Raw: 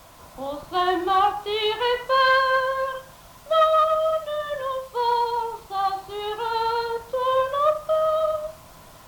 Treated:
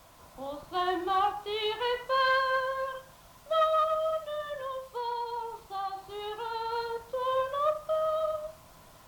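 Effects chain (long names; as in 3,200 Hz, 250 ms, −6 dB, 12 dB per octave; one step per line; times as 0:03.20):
0:04.45–0:06.72: downward compressor 2.5 to 1, threshold −25 dBFS, peak gain reduction 5.5 dB
level −7.5 dB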